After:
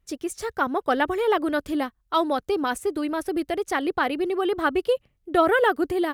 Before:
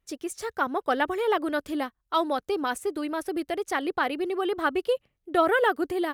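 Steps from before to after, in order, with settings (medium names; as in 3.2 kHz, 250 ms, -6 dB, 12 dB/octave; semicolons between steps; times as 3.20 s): bass shelf 180 Hz +8 dB; trim +2 dB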